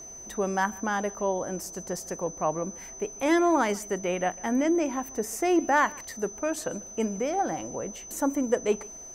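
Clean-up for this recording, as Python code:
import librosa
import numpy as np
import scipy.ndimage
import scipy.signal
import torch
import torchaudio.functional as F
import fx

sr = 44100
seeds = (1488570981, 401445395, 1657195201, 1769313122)

y = fx.fix_declip(x, sr, threshold_db=-12.5)
y = fx.notch(y, sr, hz=6100.0, q=30.0)
y = fx.fix_echo_inverse(y, sr, delay_ms=145, level_db=-23.5)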